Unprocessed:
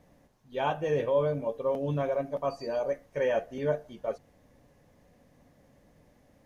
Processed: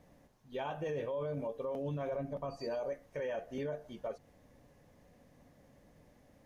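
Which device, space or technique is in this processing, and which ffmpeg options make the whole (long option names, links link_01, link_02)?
stacked limiters: -filter_complex "[0:a]asettb=1/sr,asplit=3[link_01][link_02][link_03];[link_01]atrim=end=2.114[link_04];[link_02]atrim=start=2.11:end=2.57,asetpts=PTS-STARTPTS,afade=type=in:duration=0.004:curve=qsin,afade=type=out:start_time=0.456:duration=0.004:curve=qsin,bass=frequency=250:gain=9,treble=frequency=4000:gain=-2[link_05];[link_03]atrim=start=2.566[link_06];[link_04][link_05]acrossfade=duration=0.004:curve1=hsin:curve2=qsin[link_07];[link_07][link_06]acrossfade=duration=0.004:curve1=qsin:curve2=hsin,alimiter=limit=-22.5dB:level=0:latency=1:release=136,alimiter=level_in=2dB:limit=-24dB:level=0:latency=1:release=206,volume=-2dB,alimiter=level_in=5dB:limit=-24dB:level=0:latency=1:release=12,volume=-5dB,volume=-1.5dB"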